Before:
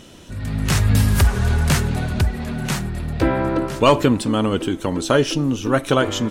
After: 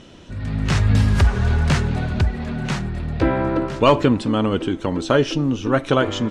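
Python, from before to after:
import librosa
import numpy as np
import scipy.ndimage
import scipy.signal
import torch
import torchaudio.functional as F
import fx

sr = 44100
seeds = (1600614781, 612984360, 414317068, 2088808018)

y = fx.air_absorb(x, sr, metres=98.0)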